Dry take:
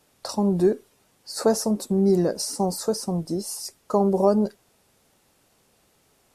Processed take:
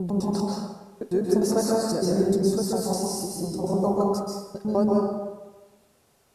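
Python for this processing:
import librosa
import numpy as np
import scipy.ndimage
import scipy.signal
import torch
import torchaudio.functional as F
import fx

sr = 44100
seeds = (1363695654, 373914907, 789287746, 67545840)

y = fx.block_reorder(x, sr, ms=101.0, group=6)
y = fx.rev_plate(y, sr, seeds[0], rt60_s=1.2, hf_ratio=0.6, predelay_ms=120, drr_db=-3.5)
y = y * 10.0 ** (-5.5 / 20.0)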